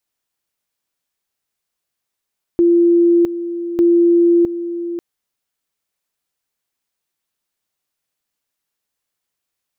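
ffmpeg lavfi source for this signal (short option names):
-f lavfi -i "aevalsrc='pow(10,(-8.5-12*gte(mod(t,1.2),0.66))/20)*sin(2*PI*343*t)':d=2.4:s=44100"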